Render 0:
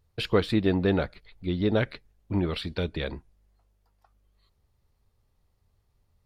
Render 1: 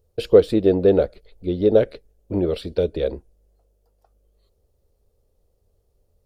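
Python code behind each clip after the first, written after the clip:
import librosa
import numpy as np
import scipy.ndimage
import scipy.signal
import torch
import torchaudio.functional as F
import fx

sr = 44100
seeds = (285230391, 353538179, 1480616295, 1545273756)

y = fx.graphic_eq_10(x, sr, hz=(125, 250, 500, 1000, 2000, 4000), db=(-7, -3, 12, -10, -10, -5))
y = y * 10.0 ** (5.0 / 20.0)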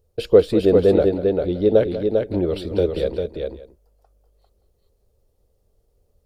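y = fx.echo_multitap(x, sr, ms=(193, 398, 572), db=(-13.0, -4.5, -19.5))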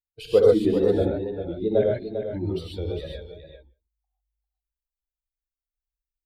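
y = fx.bin_expand(x, sr, power=2.0)
y = fx.rev_gated(y, sr, seeds[0], gate_ms=160, shape='rising', drr_db=-2.5)
y = fx.wow_flutter(y, sr, seeds[1], rate_hz=2.1, depth_cents=59.0)
y = y * 10.0 ** (-4.5 / 20.0)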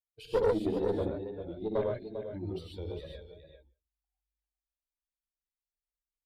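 y = fx.tube_stage(x, sr, drive_db=13.0, bias=0.55)
y = y * 10.0 ** (-7.0 / 20.0)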